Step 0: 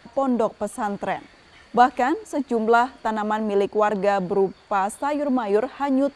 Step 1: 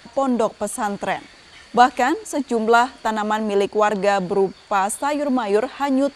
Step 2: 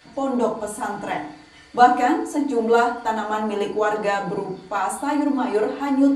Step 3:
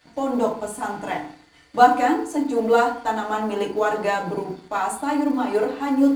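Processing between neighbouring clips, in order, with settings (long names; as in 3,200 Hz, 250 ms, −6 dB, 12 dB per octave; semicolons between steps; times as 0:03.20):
high-shelf EQ 2,500 Hz +9.5 dB; level +1.5 dB
feedback delay network reverb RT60 0.55 s, low-frequency decay 1.35×, high-frequency decay 0.5×, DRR −4 dB; level −8.5 dB
mu-law and A-law mismatch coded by A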